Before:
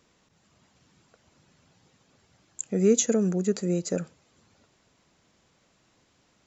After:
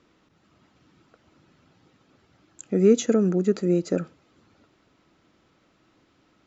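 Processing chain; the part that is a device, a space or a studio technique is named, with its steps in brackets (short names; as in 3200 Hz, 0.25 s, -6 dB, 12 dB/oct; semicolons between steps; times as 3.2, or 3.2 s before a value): inside a cardboard box (LPF 4200 Hz 12 dB/oct; small resonant body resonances 310/1300 Hz, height 8 dB, ringing for 30 ms); gain +1.5 dB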